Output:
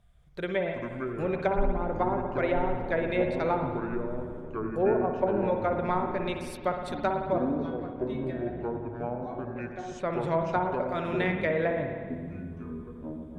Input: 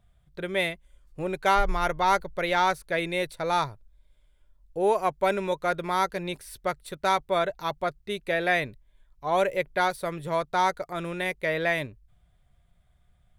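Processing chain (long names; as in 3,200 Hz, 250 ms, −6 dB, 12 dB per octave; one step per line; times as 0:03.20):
treble cut that deepens with the level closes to 460 Hz, closed at −20 dBFS
0:07.38–0:09.92: tuned comb filter 370 Hz, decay 0.3 s, harmonics all, mix 90%
convolution reverb RT60 1.6 s, pre-delay 55 ms, DRR 4 dB
delay with pitch and tempo change per echo 183 ms, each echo −7 semitones, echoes 3, each echo −6 dB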